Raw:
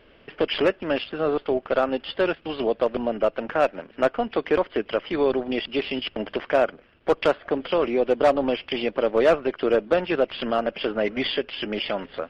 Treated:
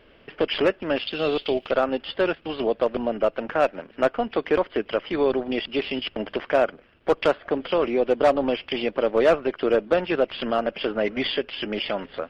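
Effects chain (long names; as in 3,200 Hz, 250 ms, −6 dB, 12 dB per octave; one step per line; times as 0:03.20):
0:01.07–0:01.71: high shelf with overshoot 2,100 Hz +12 dB, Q 1.5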